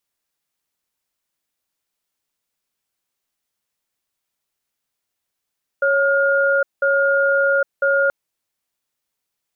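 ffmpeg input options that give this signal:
-f lavfi -i "aevalsrc='0.15*(sin(2*PI*554*t)+sin(2*PI*1420*t))*clip(min(mod(t,1),0.81-mod(t,1))/0.005,0,1)':d=2.28:s=44100"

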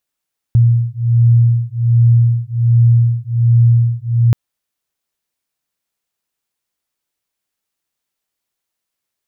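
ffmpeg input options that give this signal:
-f lavfi -i "aevalsrc='0.266*(sin(2*PI*117*t)+sin(2*PI*118.3*t))':d=3.78:s=44100"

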